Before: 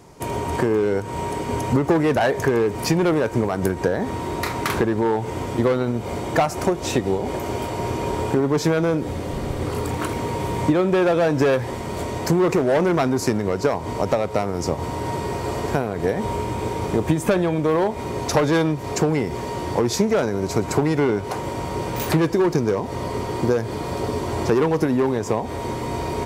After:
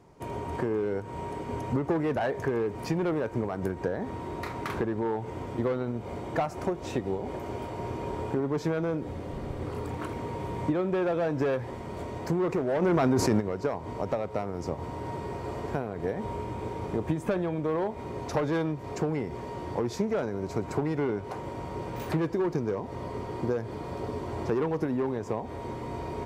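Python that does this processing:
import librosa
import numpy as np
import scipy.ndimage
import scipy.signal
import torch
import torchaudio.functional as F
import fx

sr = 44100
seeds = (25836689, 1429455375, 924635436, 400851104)

y = fx.env_flatten(x, sr, amount_pct=100, at=(12.81, 13.39), fade=0.02)
y = fx.high_shelf(y, sr, hz=3600.0, db=-11.0)
y = y * librosa.db_to_amplitude(-9.0)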